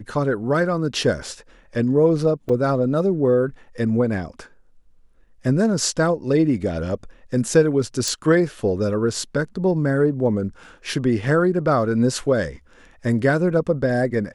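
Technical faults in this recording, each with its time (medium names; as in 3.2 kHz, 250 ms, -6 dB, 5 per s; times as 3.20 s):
2.49 s: dropout 4.6 ms
8.08 s: pop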